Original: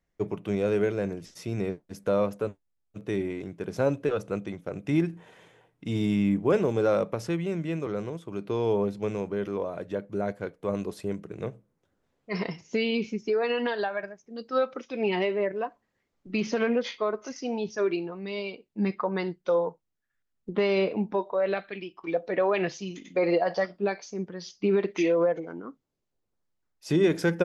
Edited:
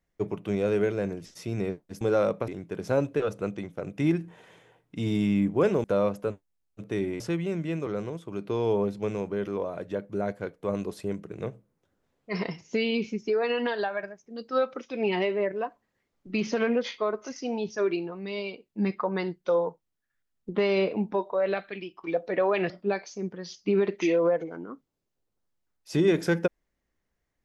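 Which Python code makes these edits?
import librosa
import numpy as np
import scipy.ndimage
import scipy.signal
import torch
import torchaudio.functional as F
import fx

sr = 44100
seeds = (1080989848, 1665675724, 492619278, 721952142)

y = fx.edit(x, sr, fx.swap(start_s=2.01, length_s=1.36, other_s=6.73, other_length_s=0.47),
    fx.cut(start_s=22.7, length_s=0.96), tone=tone)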